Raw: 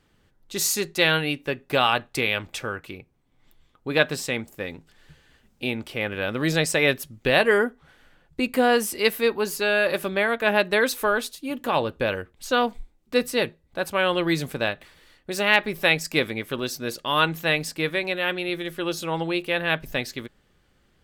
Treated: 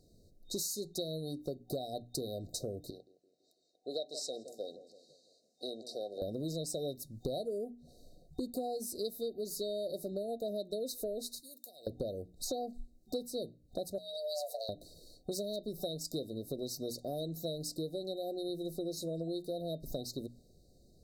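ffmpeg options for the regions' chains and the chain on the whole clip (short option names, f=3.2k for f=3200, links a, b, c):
-filter_complex "[0:a]asettb=1/sr,asplit=3[a][b][c];[a]atrim=end=2.904[d];[b]atrim=start=2.9:end=6.22,asetpts=PTS-STARTPTS,afade=t=in:d=0.004:c=qsin,afade=t=out:st=3.316:d=0.004:c=qsin,highpass=690,lowpass=6.4k,asplit=2[e][f];[f]adelay=166,lowpass=f=1k:p=1,volume=-14dB,asplit=2[g][h];[h]adelay=166,lowpass=f=1k:p=1,volume=0.54,asplit=2[i][j];[j]adelay=166,lowpass=f=1k:p=1,volume=0.54,asplit=2[k][l];[l]adelay=166,lowpass=f=1k:p=1,volume=0.54,asplit=2[m][n];[n]adelay=166,lowpass=f=1k:p=1,volume=0.54[o];[e][g][i][k][m][o]amix=inputs=6:normalize=0,atrim=end_sample=146412[p];[c]atrim=start=6.216[q];[d][p]acrossfade=d=0.004:c1=hsin:c2=qsin[r];[r][q]acrossfade=d=0.004:c1=qsin:c2=hsin,asettb=1/sr,asplit=3[s][t][u];[s]atrim=end=11.404[v];[t]atrim=start=11.4:end=11.87,asetpts=PTS-STARTPTS,afade=t=in:d=0.004:c=qsin,afade=t=out:st=0.466:d=0.004:c=qsin,aderivative,acompressor=threshold=-45dB:ratio=12:attack=3.2:release=140:knee=1:detection=peak[w];[u]atrim=start=11.866[x];[v][w]acrossfade=d=0.004:c1=hsin:c2=qsin[y];[y][x]acrossfade=d=0.004:c1=qsin:c2=hsin,asettb=1/sr,asplit=3[z][aa][ab];[z]atrim=end=13.984[ac];[aa]atrim=start=13.98:end=14.69,asetpts=PTS-STARTPTS,afade=t=in:d=0.004:c=qsin,afade=t=out:st=0.706:d=0.004:c=qsin,acompressor=threshold=-25dB:ratio=3:attack=3.2:release=140:knee=1:detection=peak,aecho=1:1:1.2:0.35,atrim=end_sample=31311,afreqshift=440[ad];[ab]atrim=start=14.686[ae];[ac][ad]acrossfade=d=0.004:c1=hsin:c2=qsin[af];[af][ae]acrossfade=d=0.004:c1=qsin:c2=hsin,bandreject=f=60:t=h:w=6,bandreject=f=120:t=h:w=6,bandreject=f=180:t=h:w=6,bandreject=f=240:t=h:w=6,bandreject=f=300:t=h:w=6,afftfilt=real='re*(1-between(b*sr/4096,750,3700))':imag='im*(1-between(b*sr/4096,750,3700))':win_size=4096:overlap=0.75,acompressor=threshold=-37dB:ratio=8,volume=1.5dB"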